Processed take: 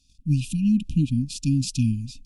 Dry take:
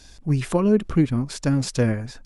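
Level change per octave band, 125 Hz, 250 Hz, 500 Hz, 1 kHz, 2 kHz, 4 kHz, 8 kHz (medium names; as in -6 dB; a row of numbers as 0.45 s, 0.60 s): 0.0 dB, -1.0 dB, under -25 dB, under -40 dB, -10.5 dB, 0.0 dB, 0.0 dB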